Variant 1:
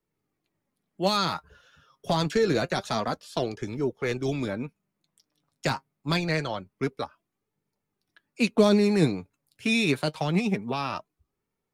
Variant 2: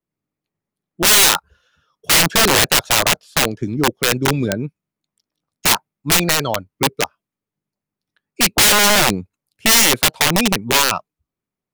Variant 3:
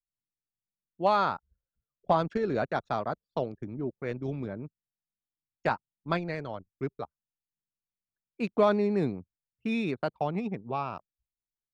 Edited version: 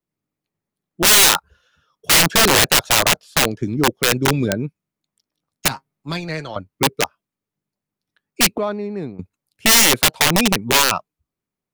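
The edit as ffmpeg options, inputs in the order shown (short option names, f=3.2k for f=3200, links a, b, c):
-filter_complex "[1:a]asplit=3[a][b][c];[a]atrim=end=5.682[d];[0:a]atrim=start=5.678:end=6.562[e];[b]atrim=start=6.558:end=8.582[f];[2:a]atrim=start=8.578:end=9.192[g];[c]atrim=start=9.188[h];[d][e]acrossfade=d=0.004:c1=hsin:c2=hsin[i];[i][f]acrossfade=d=0.004:c1=hsin:c2=hsin[j];[j][g]acrossfade=d=0.004:c1=hsin:c2=hsin[k];[k][h]acrossfade=d=0.004:c1=hsin:c2=hsin"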